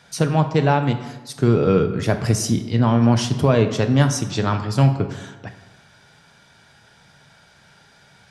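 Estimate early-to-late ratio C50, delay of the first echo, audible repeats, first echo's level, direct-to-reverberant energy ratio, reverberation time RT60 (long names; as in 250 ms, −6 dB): 10.0 dB, no echo audible, no echo audible, no echo audible, 7.0 dB, 1.2 s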